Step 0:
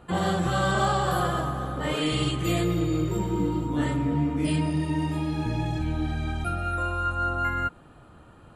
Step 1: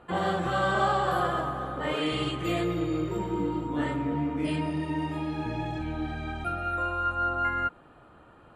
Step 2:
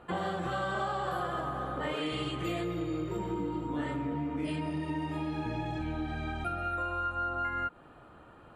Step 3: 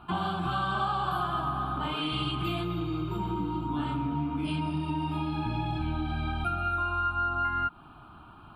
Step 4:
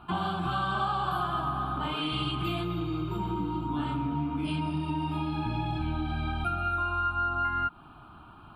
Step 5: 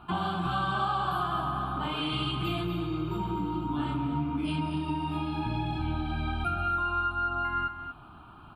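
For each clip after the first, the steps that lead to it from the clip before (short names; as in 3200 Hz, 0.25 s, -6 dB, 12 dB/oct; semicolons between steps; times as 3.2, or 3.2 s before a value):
tone controls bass -8 dB, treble -11 dB
compressor 4:1, threshold -31 dBFS, peak gain reduction 9 dB
fixed phaser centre 1900 Hz, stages 6; gain +6.5 dB
nothing audible
echo 0.235 s -11 dB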